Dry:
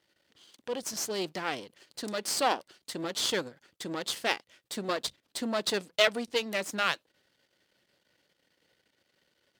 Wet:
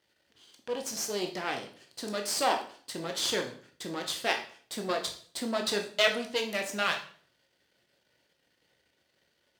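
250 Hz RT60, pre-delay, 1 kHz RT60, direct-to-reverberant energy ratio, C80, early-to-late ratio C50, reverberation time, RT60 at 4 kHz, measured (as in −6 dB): 0.55 s, 15 ms, 0.45 s, 3.0 dB, 15.0 dB, 10.0 dB, 0.50 s, 0.45 s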